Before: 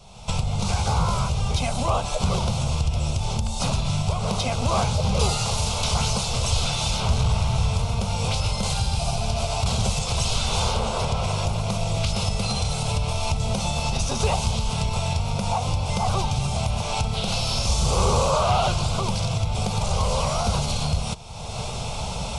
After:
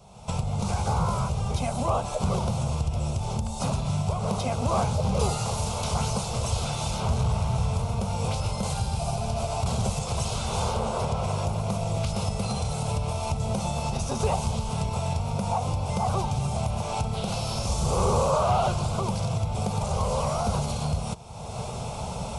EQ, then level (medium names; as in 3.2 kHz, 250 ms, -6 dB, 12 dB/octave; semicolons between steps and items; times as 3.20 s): high-pass 94 Hz 6 dB/octave; peaking EQ 3.7 kHz -10 dB 2.3 oct; 0.0 dB